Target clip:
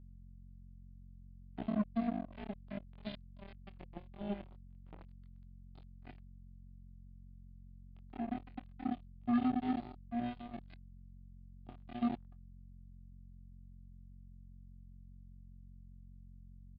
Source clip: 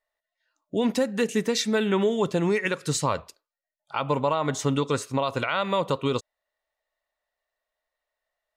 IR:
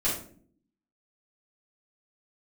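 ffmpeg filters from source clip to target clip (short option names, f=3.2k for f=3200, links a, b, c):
-filter_complex "[0:a]equalizer=f=1.4k:w=0.33:g=-8,aeval=exprs='(tanh(22.4*val(0)+0.4)-tanh(0.4))/22.4':c=same,asplit=3[a][b][c];[a]bandpass=f=270:t=q:w=8,volume=0dB[d];[b]bandpass=f=2.29k:t=q:w=8,volume=-6dB[e];[c]bandpass=f=3.01k:t=q:w=8,volume=-9dB[f];[d][e][f]amix=inputs=3:normalize=0[g];[1:a]atrim=start_sample=2205,afade=t=out:st=0.33:d=0.01,atrim=end_sample=14994[h];[g][h]afir=irnorm=-1:irlink=0,aresample=11025,acrusher=bits=3:mix=0:aa=0.5,aresample=44100,aeval=exprs='val(0)+0.00562*(sin(2*PI*50*n/s)+sin(2*PI*2*50*n/s)/2+sin(2*PI*3*50*n/s)/3+sin(2*PI*4*50*n/s)/4+sin(2*PI*5*50*n/s)/5)':c=same,atempo=0.51,bandreject=f=560:w=12,asetrate=39289,aresample=44100,atempo=1.12246,volume=-8dB"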